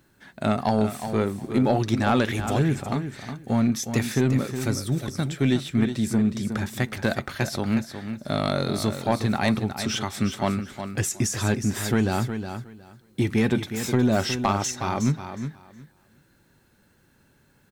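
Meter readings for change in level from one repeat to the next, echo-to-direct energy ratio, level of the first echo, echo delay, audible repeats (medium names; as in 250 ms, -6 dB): -15.0 dB, -9.0 dB, -9.0 dB, 364 ms, 2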